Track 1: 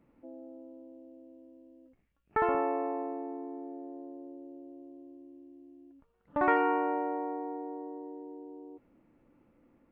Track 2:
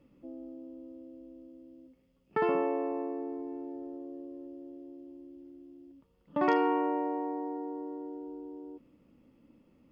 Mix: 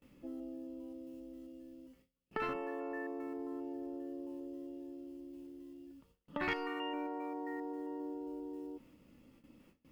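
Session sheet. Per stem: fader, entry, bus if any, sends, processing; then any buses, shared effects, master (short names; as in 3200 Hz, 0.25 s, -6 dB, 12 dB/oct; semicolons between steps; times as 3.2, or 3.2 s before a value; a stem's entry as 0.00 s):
-5.5 dB, 0.00 s, no send, spectral limiter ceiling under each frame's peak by 30 dB; stepped resonator 7.5 Hz 89–1400 Hz
-1.0 dB, 0.00 s, no send, compressor 6:1, threshold -38 dBFS, peak gain reduction 15.5 dB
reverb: off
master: high shelf 2000 Hz +10 dB; gate with hold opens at -54 dBFS; low shelf 120 Hz +4.5 dB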